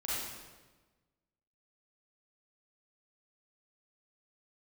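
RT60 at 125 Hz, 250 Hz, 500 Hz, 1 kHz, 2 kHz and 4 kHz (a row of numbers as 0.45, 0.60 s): 1.6, 1.5, 1.3, 1.2, 1.1, 1.0 s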